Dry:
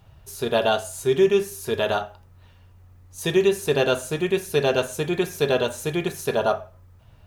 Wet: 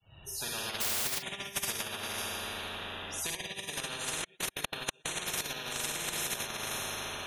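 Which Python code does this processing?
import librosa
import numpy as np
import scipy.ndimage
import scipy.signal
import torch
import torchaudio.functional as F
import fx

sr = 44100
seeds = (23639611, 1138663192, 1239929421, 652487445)

y = fx.fade_in_head(x, sr, length_s=1.32)
y = fx.spec_topn(y, sr, count=64)
y = fx.low_shelf(y, sr, hz=74.0, db=-10.0)
y = fx.rev_schroeder(y, sr, rt60_s=1.7, comb_ms=38, drr_db=-4.0)
y = fx.mod_noise(y, sr, seeds[0], snr_db=15, at=(0.8, 1.21), fade=0.02)
y = fx.step_gate(y, sr, bpm=184, pattern='..xx..x.x.xx', floor_db=-60.0, edge_ms=4.5, at=(4.08, 5.09), fade=0.02)
y = fx.over_compress(y, sr, threshold_db=-24.0, ratio=-0.5)
y = fx.band_shelf(y, sr, hz=3300.0, db=12.5, octaves=1.7)
y = fx.spectral_comp(y, sr, ratio=10.0)
y = y * 10.0 ** (-9.0 / 20.0)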